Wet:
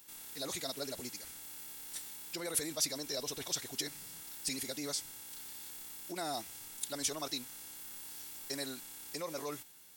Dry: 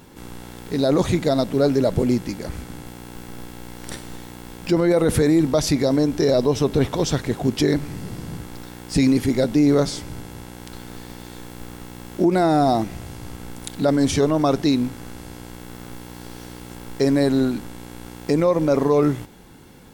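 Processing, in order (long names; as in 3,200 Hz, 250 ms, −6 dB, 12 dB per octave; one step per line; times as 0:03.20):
phase-vocoder stretch with locked phases 0.5×
first-order pre-emphasis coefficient 0.97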